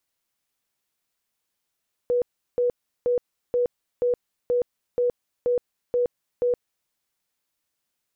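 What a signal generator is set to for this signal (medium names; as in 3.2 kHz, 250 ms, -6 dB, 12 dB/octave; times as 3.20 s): tone bursts 488 Hz, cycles 58, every 0.48 s, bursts 10, -18.5 dBFS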